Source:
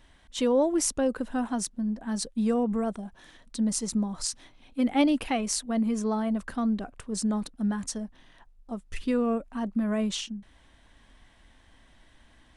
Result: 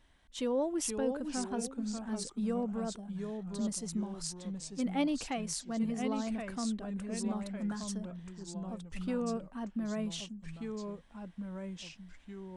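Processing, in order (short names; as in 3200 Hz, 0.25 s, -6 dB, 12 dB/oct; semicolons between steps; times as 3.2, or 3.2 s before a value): echoes that change speed 0.424 s, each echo -2 st, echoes 2, each echo -6 dB; gain -8.5 dB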